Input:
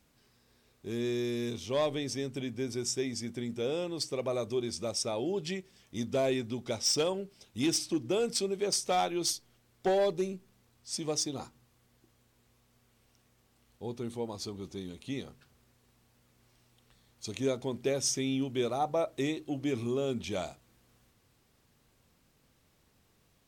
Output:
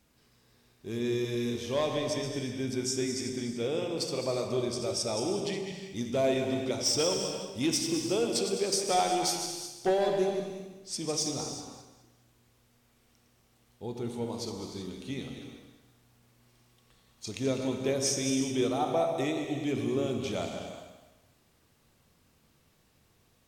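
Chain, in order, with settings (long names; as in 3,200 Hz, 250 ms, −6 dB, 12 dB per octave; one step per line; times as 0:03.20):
feedback delay that plays each chunk backwards 104 ms, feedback 52%, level −7.5 dB
reverb whose tail is shaped and stops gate 400 ms flat, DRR 4.5 dB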